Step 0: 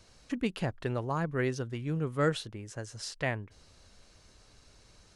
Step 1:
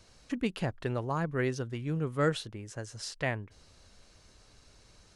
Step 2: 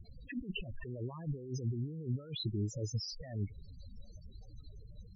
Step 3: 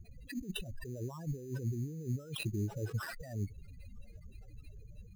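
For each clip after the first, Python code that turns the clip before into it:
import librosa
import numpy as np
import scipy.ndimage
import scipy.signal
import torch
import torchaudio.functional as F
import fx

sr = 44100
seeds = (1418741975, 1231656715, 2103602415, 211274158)

y1 = x
y2 = fx.over_compress(y1, sr, threshold_db=-42.0, ratio=-1.0)
y2 = fx.spec_topn(y2, sr, count=8)
y2 = y2 * librosa.db_to_amplitude(3.5)
y3 = fx.sample_hold(y2, sr, seeds[0], rate_hz=6600.0, jitter_pct=0)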